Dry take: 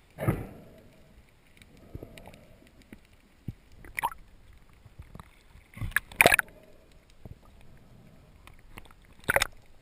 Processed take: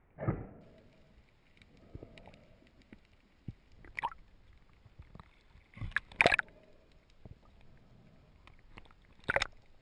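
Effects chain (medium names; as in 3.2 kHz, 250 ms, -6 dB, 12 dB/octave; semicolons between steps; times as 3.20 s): low-pass 1.9 kHz 24 dB/octave, from 0.61 s 6.4 kHz; trim -6.5 dB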